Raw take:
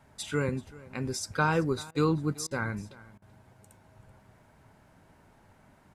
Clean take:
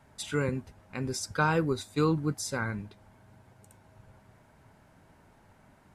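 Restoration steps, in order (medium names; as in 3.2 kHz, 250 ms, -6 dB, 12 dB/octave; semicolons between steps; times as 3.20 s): interpolate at 1.91/2.47/3.18 s, 39 ms; inverse comb 384 ms -20.5 dB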